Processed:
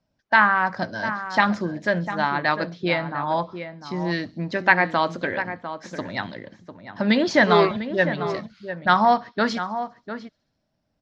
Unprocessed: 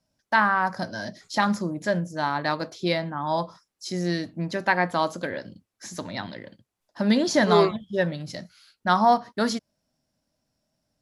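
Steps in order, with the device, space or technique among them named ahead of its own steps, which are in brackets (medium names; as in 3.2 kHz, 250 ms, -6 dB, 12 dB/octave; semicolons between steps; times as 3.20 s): dynamic bell 2.3 kHz, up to +6 dB, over -39 dBFS, Q 0.92; feedback echo behind a high-pass 67 ms, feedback 69%, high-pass 4.8 kHz, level -18.5 dB; harmonic-percussive split harmonic -4 dB; shout across a valley (distance through air 170 m; echo from a far wall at 120 m, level -10 dB); 2.72–4.11 s: distance through air 110 m; trim +4.5 dB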